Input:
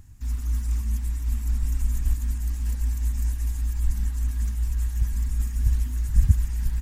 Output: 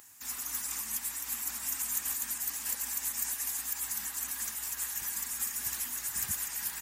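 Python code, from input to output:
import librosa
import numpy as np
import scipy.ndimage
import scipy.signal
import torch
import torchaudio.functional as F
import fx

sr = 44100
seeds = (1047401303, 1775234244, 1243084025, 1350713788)

y = scipy.signal.sosfilt(scipy.signal.butter(2, 730.0, 'highpass', fs=sr, output='sos'), x)
y = fx.high_shelf(y, sr, hz=9000.0, db=11.5)
y = y * 10.0 ** (6.5 / 20.0)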